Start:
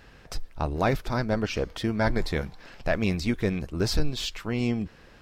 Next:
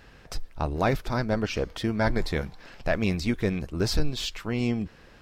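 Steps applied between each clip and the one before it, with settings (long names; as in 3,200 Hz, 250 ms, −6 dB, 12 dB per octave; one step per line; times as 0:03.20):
no processing that can be heard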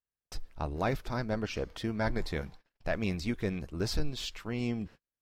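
noise gate −41 dBFS, range −43 dB
level −6.5 dB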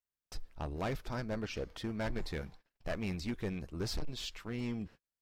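hard clipping −27.5 dBFS, distortion −12 dB
level −3.5 dB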